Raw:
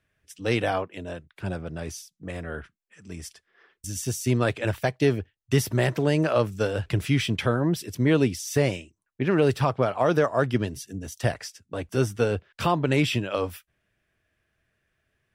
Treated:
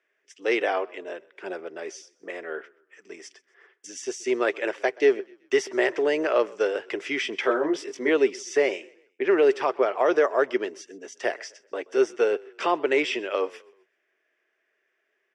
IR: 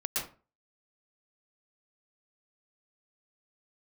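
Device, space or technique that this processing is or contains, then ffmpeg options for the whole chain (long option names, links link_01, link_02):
phone speaker on a table: -filter_complex "[0:a]asettb=1/sr,asplit=3[link_01][link_02][link_03];[link_01]atrim=end=7.414[link_04];[link_02]atrim=start=7.41:end=8.09,asetpts=PTS-STARTPTS,afade=type=in:duration=0.004:curve=qsin,afade=type=out:start_time=0.676:duration=0.004:curve=qsin,asplit=2[link_05][link_06];[link_06]adelay=20,volume=-3dB[link_07];[link_05][link_07]amix=inputs=2:normalize=0,atrim=end_sample=29988[link_08];[link_03]atrim=start=8.086[link_09];[link_04][link_08]acrossfade=duration=0.004:curve1=hsin:curve2=qsin[link_10];[link_10][link_09]acrossfade=duration=0.004:curve1=qsin:curve2=hsin,asplit=4[link_11][link_12][link_13][link_14];[link_12]adelay=127,afreqshift=-32,volume=-23.5dB[link_15];[link_13]adelay=254,afreqshift=-64,volume=-31.2dB[link_16];[link_14]adelay=381,afreqshift=-96,volume=-39dB[link_17];[link_11][link_15][link_16][link_17]amix=inputs=4:normalize=0,highpass=frequency=360:width=0.5412,highpass=frequency=360:width=1.3066,equalizer=frequency=390:width_type=q:width=4:gain=8,equalizer=frequency=2000:width_type=q:width=4:gain=6,equalizer=frequency=4100:width_type=q:width=4:gain=-9,lowpass=frequency=6500:width=0.5412,lowpass=frequency=6500:width=1.3066"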